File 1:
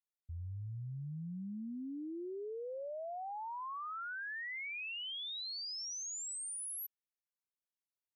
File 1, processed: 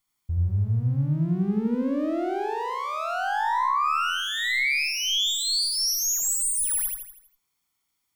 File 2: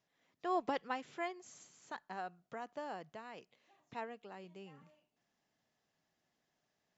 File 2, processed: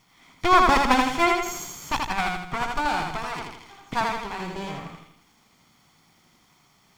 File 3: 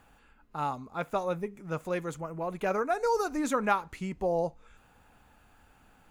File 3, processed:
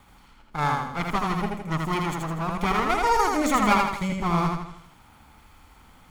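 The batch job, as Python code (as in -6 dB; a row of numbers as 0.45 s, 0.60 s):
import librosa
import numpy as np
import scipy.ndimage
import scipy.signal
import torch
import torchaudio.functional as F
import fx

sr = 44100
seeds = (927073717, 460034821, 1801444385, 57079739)

y = fx.lower_of_two(x, sr, delay_ms=0.91)
y = fx.echo_feedback(y, sr, ms=81, feedback_pct=46, wet_db=-3.0)
y = y * 10.0 ** (-26 / 20.0) / np.sqrt(np.mean(np.square(y)))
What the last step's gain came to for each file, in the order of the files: +17.5 dB, +22.5 dB, +7.0 dB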